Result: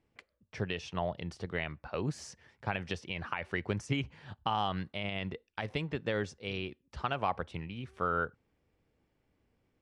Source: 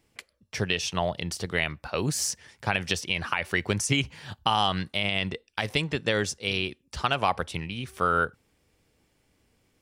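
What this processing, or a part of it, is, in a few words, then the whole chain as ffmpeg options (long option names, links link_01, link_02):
through cloth: -af "lowpass=8900,highshelf=frequency=3800:gain=-17.5,volume=-6dB"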